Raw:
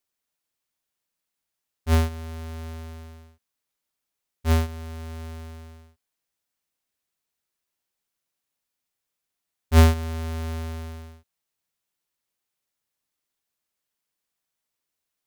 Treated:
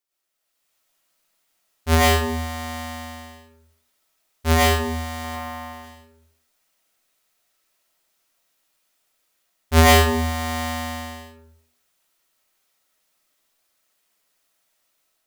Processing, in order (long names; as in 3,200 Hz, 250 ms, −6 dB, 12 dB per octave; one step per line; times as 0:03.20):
0:05.24–0:05.73: octave-band graphic EQ 125/1,000/4,000/8,000 Hz −5/+6/−4/−6 dB
automatic gain control gain up to 9.5 dB
low-shelf EQ 270 Hz −7 dB
comb and all-pass reverb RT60 0.61 s, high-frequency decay 0.45×, pre-delay 70 ms, DRR −7 dB
level −2.5 dB